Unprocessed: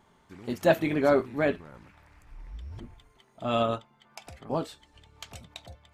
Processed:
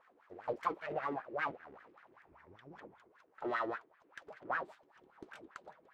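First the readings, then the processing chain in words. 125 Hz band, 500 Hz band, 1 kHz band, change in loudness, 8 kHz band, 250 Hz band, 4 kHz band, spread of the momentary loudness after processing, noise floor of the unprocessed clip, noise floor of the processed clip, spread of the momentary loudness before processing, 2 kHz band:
−21.0 dB, −15.0 dB, −5.5 dB, −12.5 dB, can't be measured, −16.5 dB, −17.5 dB, 19 LU, −63 dBFS, −70 dBFS, 22 LU, −6.5 dB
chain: full-wave rectification
downward compressor 16 to 1, threshold −28 dBFS, peak gain reduction 14 dB
LFO wah 5.1 Hz 330–1,700 Hz, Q 4.5
level +9.5 dB

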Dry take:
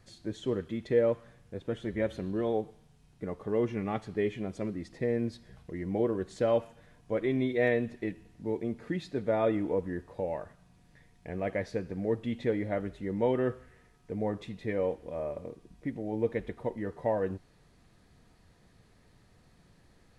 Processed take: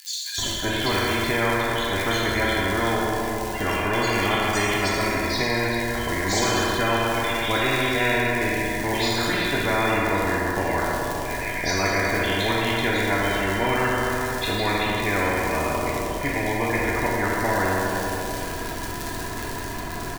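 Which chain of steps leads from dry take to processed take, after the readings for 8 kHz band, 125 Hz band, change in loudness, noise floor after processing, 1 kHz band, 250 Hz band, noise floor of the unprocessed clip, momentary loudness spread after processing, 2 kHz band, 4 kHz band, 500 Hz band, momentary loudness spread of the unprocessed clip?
can't be measured, +10.0 dB, +9.5 dB, −31 dBFS, +17.5 dB, +7.0 dB, −63 dBFS, 6 LU, +20.5 dB, +25.5 dB, +5.5 dB, 12 LU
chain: low-shelf EQ 120 Hz +11.5 dB
comb filter 2.9 ms, depth 73%
spectral peaks only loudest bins 64
hollow resonant body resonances 980/1,600 Hz, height 15 dB
surface crackle 97 per second −44 dBFS
multiband delay without the direct sound highs, lows 380 ms, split 2,900 Hz
dense smooth reverb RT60 1.4 s, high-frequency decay 0.95×, DRR −3.5 dB
every bin compressed towards the loudest bin 4 to 1

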